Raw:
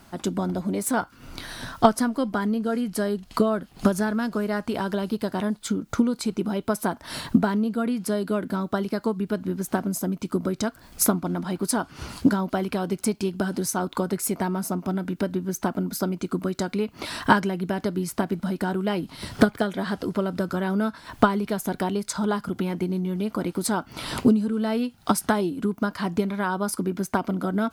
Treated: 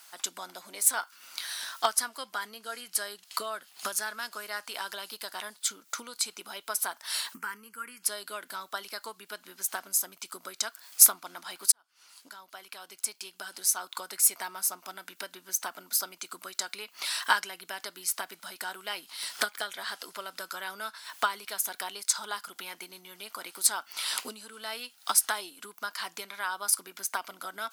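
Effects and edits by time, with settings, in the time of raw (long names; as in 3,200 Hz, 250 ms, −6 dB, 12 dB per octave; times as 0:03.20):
0:07.34–0:08.03: phaser with its sweep stopped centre 1,600 Hz, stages 4
0:11.72–0:14.30: fade in
whole clip: high-pass filter 1,100 Hz 12 dB per octave; high-shelf EQ 3,100 Hz +11.5 dB; level −4 dB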